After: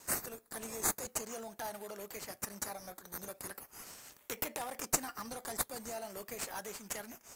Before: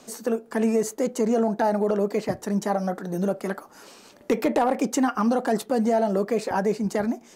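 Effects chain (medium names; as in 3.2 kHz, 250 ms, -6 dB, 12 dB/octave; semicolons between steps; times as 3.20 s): pre-emphasis filter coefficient 0.97; gate with hold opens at -54 dBFS; treble shelf 8.3 kHz +11 dB; in parallel at -4 dB: decimation with a swept rate 12×, swing 60% 0.41 Hz; on the sum: trim -4.5 dB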